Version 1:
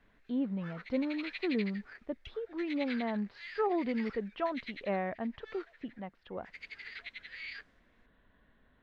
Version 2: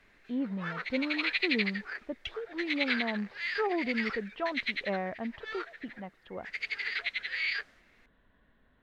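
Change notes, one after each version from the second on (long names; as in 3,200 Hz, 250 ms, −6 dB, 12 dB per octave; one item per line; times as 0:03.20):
background +12.0 dB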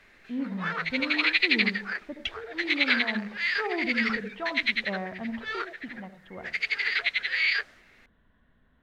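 background +7.0 dB
reverb: on, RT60 0.35 s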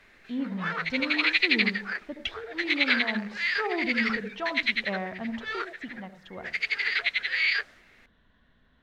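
speech: remove high-frequency loss of the air 360 metres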